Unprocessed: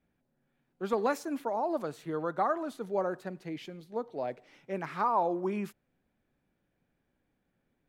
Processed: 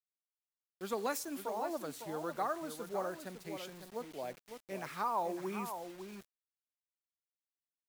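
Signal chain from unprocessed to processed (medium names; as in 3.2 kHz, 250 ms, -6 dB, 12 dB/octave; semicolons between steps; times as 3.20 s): pre-emphasis filter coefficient 0.8; echo from a far wall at 95 m, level -8 dB; bit crusher 10-bit; trim +6 dB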